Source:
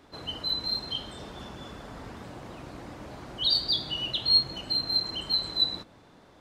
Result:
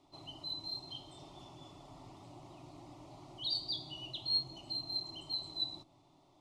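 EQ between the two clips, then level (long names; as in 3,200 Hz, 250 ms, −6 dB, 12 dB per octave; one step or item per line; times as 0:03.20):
dynamic equaliser 2,100 Hz, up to −4 dB, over −40 dBFS, Q 0.71
low-pass filter 9,800 Hz 12 dB per octave
phaser with its sweep stopped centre 320 Hz, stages 8
−8.0 dB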